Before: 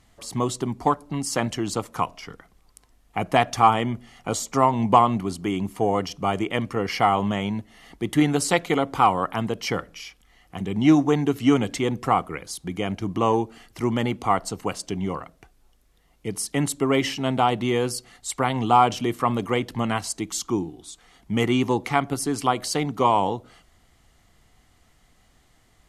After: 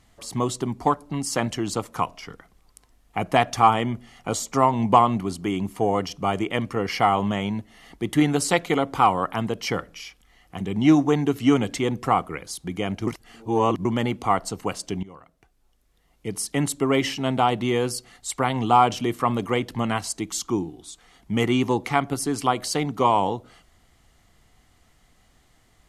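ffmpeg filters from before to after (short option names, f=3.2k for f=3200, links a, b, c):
-filter_complex "[0:a]asplit=4[a][b][c][d];[a]atrim=end=13.072[e];[b]atrim=start=13.068:end=13.852,asetpts=PTS-STARTPTS,areverse[f];[c]atrim=start=13.848:end=15.03,asetpts=PTS-STARTPTS,afade=t=out:st=1.178:d=0.004:c=hsin:silence=0.105925[g];[d]atrim=start=15.03,asetpts=PTS-STARTPTS,afade=t=in:d=1.36:silence=0.105925[h];[e][f]acrossfade=d=0.004:c1=hsin:c2=hsin[i];[g][h]concat=n=2:v=0:a=1[j];[i][j]acrossfade=d=0.004:c1=hsin:c2=hsin"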